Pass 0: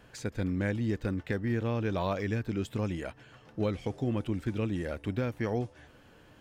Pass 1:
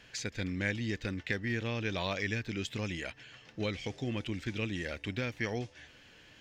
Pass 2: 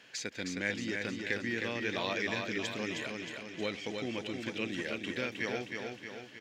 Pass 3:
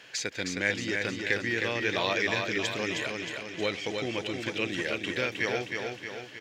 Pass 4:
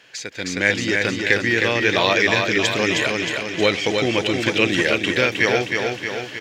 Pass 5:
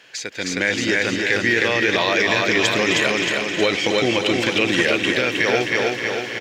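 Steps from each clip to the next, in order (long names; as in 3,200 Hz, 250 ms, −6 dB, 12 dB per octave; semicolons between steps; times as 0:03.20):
flat-topped bell 3,500 Hz +12.5 dB 2.3 octaves; level −5 dB
high-pass filter 220 Hz 12 dB per octave; repeating echo 313 ms, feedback 54%, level −4.5 dB
parametric band 230 Hz −7.5 dB 0.55 octaves; level +6.5 dB
automatic gain control gain up to 14 dB
high-pass filter 140 Hz 6 dB per octave; brickwall limiter −9 dBFS, peak gain reduction 6.5 dB; on a send: repeating echo 261 ms, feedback 53%, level −10 dB; on the sum: level +2 dB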